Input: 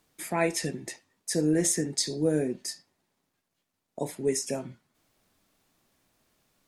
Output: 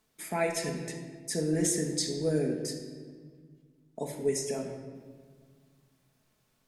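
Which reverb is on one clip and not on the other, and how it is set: simulated room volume 2200 m³, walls mixed, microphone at 1.5 m; trim -4.5 dB

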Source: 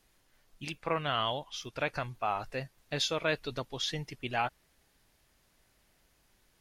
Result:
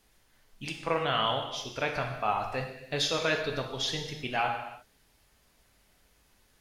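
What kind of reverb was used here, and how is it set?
gated-style reverb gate 370 ms falling, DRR 2.5 dB; trim +1.5 dB

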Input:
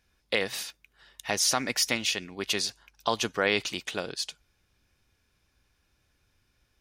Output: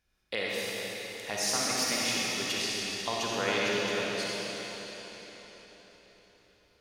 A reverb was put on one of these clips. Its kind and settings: algorithmic reverb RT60 4.6 s, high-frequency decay 0.95×, pre-delay 10 ms, DRR -6 dB; trim -8 dB

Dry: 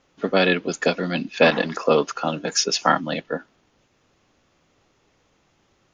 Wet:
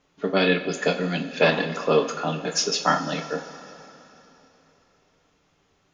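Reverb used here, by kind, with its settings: two-slope reverb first 0.29 s, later 3.4 s, from -17 dB, DRR 3 dB; trim -4 dB

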